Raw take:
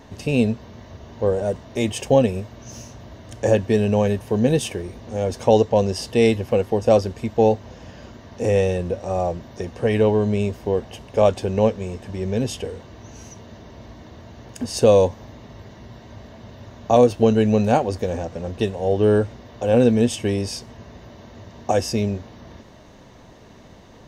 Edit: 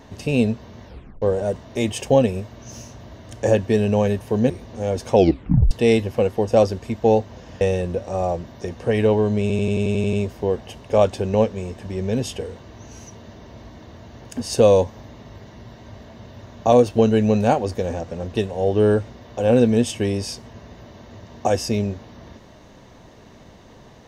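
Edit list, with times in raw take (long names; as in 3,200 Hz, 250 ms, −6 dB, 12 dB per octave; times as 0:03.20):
0:00.85: tape stop 0.37 s
0:04.50–0:04.84: remove
0:05.48: tape stop 0.57 s
0:07.95–0:08.57: remove
0:10.37: stutter 0.09 s, 9 plays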